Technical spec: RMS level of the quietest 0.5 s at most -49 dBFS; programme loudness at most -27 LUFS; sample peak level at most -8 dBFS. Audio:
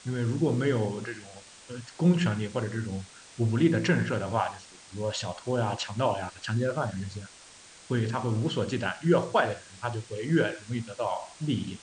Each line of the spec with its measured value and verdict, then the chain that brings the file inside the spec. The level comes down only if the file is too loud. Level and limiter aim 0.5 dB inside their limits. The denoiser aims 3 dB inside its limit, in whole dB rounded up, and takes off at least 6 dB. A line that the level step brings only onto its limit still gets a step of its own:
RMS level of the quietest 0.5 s -51 dBFS: OK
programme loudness -29.0 LUFS: OK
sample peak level -10.0 dBFS: OK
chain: none

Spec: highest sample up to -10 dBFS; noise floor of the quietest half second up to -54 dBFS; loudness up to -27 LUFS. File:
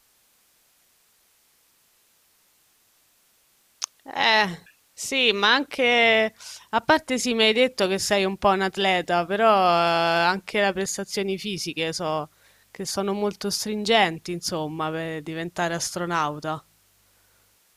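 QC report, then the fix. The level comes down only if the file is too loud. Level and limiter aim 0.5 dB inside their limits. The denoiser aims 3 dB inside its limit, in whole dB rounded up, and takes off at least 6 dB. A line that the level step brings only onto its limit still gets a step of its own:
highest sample -5.5 dBFS: fail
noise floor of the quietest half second -63 dBFS: OK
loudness -22.5 LUFS: fail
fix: gain -5 dB

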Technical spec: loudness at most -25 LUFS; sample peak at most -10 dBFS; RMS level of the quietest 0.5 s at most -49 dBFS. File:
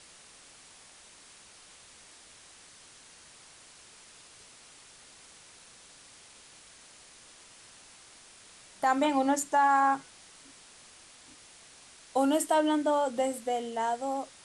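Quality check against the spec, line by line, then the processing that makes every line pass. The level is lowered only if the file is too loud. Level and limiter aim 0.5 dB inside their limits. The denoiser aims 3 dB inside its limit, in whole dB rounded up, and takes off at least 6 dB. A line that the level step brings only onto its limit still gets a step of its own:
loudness -28.0 LUFS: OK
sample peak -14.5 dBFS: OK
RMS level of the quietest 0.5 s -54 dBFS: OK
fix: none

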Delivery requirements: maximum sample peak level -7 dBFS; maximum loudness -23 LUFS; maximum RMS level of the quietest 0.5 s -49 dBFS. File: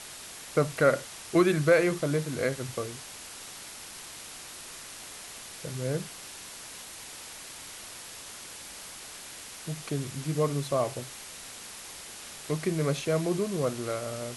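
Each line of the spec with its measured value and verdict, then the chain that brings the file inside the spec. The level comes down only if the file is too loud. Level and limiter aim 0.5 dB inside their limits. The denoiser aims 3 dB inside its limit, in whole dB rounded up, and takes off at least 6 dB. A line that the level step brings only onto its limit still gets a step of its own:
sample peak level -11.0 dBFS: OK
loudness -31.5 LUFS: OK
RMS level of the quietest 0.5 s -44 dBFS: fail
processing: denoiser 8 dB, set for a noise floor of -44 dBFS

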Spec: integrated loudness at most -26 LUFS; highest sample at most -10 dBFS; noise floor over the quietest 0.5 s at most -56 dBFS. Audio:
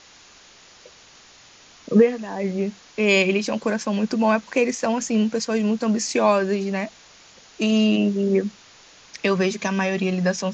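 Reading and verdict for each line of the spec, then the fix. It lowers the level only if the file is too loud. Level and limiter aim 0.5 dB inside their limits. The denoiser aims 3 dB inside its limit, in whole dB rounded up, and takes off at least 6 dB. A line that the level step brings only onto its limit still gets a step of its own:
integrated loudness -21.5 LUFS: fail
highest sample -5.0 dBFS: fail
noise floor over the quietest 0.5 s -50 dBFS: fail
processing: denoiser 6 dB, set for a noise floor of -50 dBFS; gain -5 dB; limiter -10.5 dBFS

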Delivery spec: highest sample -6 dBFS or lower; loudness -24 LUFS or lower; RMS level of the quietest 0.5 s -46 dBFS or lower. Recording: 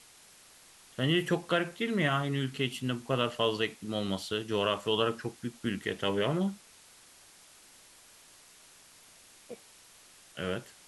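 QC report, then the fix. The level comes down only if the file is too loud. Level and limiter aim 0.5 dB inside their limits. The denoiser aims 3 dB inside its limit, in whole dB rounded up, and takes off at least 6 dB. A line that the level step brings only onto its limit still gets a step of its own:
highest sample -14.0 dBFS: OK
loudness -31.5 LUFS: OK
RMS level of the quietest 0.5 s -57 dBFS: OK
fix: none

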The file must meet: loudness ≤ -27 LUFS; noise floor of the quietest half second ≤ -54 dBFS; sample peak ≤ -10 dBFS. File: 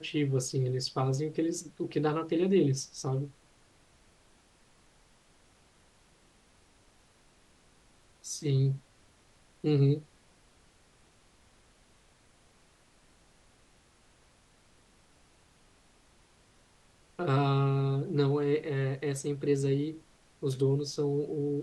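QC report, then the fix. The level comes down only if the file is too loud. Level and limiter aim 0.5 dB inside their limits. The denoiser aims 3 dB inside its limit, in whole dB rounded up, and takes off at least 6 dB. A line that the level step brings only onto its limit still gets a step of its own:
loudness -30.5 LUFS: OK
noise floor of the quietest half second -63 dBFS: OK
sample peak -15.5 dBFS: OK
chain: none

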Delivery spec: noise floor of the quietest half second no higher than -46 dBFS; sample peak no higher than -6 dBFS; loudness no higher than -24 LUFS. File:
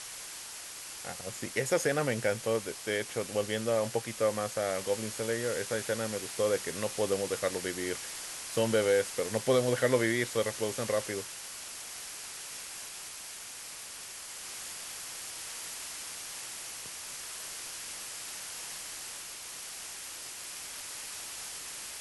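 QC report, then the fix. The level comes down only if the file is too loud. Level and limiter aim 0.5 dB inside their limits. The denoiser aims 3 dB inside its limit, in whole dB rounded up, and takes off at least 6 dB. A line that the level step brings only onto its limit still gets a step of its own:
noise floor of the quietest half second -44 dBFS: fail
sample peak -14.5 dBFS: OK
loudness -33.5 LUFS: OK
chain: denoiser 6 dB, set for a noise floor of -44 dBFS

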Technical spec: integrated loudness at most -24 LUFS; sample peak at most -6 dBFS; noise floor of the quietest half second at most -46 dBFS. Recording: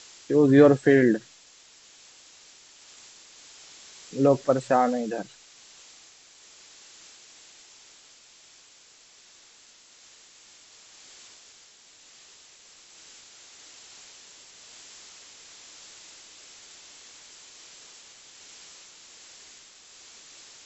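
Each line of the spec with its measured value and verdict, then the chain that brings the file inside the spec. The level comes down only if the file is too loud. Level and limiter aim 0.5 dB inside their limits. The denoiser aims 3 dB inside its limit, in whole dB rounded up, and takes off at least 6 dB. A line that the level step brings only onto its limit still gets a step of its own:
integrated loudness -21.5 LUFS: fail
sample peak -4.5 dBFS: fail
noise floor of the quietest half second -55 dBFS: OK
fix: gain -3 dB

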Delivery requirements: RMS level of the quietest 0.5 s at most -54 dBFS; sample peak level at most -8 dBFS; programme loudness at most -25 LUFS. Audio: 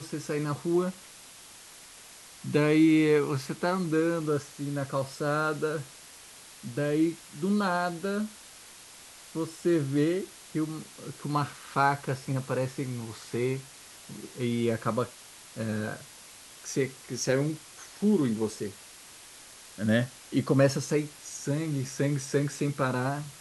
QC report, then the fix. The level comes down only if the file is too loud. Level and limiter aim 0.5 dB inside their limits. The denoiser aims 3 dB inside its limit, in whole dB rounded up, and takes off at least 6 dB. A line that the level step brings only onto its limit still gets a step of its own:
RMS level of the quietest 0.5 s -50 dBFS: fail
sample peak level -11.0 dBFS: OK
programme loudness -29.0 LUFS: OK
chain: denoiser 7 dB, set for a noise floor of -50 dBFS

